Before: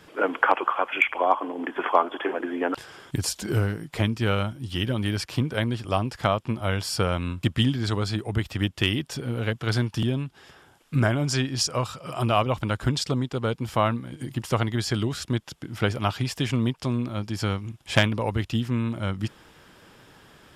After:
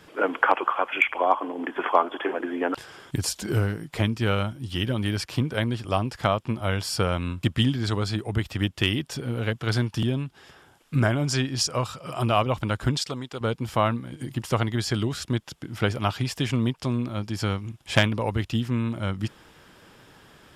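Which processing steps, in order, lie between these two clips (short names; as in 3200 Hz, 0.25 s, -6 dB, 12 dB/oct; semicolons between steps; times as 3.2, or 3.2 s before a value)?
12.97–13.41 low shelf 410 Hz -11 dB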